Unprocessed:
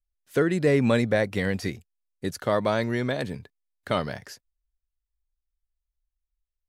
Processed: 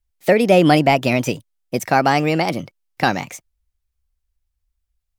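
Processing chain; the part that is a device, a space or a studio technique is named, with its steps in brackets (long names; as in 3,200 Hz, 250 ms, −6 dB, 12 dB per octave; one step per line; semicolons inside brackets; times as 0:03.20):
nightcore (speed change +29%)
level +8.5 dB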